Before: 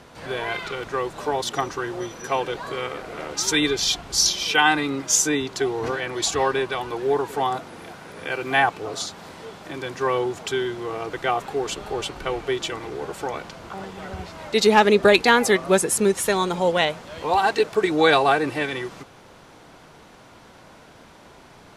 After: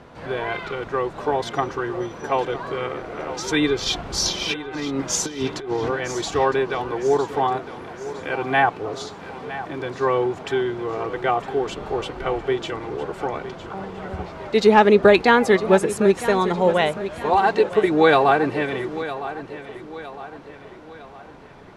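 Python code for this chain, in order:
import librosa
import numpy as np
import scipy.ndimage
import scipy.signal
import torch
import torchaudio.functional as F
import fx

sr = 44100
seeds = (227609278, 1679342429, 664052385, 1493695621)

y = fx.lowpass(x, sr, hz=1600.0, slope=6)
y = fx.over_compress(y, sr, threshold_db=-28.0, ratio=-0.5, at=(3.86, 5.77))
y = fx.echo_feedback(y, sr, ms=959, feedback_pct=45, wet_db=-13.5)
y = y * librosa.db_to_amplitude(3.0)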